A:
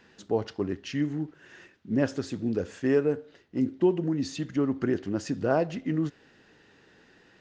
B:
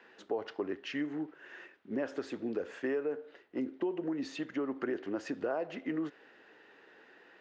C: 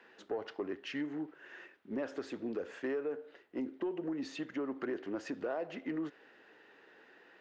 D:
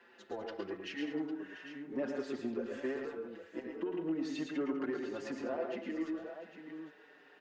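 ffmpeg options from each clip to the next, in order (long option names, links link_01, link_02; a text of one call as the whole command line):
ffmpeg -i in.wav -filter_complex "[0:a]acrossover=split=310 3100:gain=0.0708 1 0.178[link_01][link_02][link_03];[link_01][link_02][link_03]amix=inputs=3:normalize=0,asplit=2[link_04][link_05];[link_05]alimiter=level_in=0.5dB:limit=-24dB:level=0:latency=1:release=25,volume=-0.5dB,volume=2dB[link_06];[link_04][link_06]amix=inputs=2:normalize=0,acompressor=threshold=-26dB:ratio=4,volume=-5dB" out.wav
ffmpeg -i in.wav -af "asoftclip=type=tanh:threshold=-25.5dB,volume=-1.5dB" out.wav
ffmpeg -i in.wav -filter_complex "[0:a]asplit=2[link_01][link_02];[link_02]aecho=0:1:112|134|201|694|804:0.531|0.316|0.237|0.178|0.282[link_03];[link_01][link_03]amix=inputs=2:normalize=0,asplit=2[link_04][link_05];[link_05]adelay=5.3,afreqshift=-0.37[link_06];[link_04][link_06]amix=inputs=2:normalize=1,volume=1.5dB" out.wav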